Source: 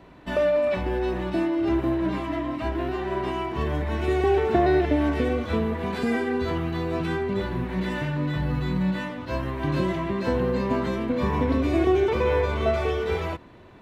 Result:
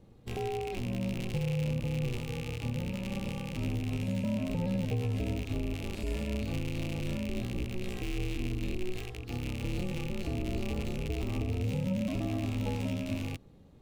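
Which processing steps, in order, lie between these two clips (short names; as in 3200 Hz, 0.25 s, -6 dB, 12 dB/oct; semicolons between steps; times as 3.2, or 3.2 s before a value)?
rattling part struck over -36 dBFS, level -15 dBFS; ring modulator 180 Hz; EQ curve 170 Hz 0 dB, 1600 Hz -22 dB, 7300 Hz -10 dB; limiter -24 dBFS, peak gain reduction 7 dB; high shelf 3600 Hz +11 dB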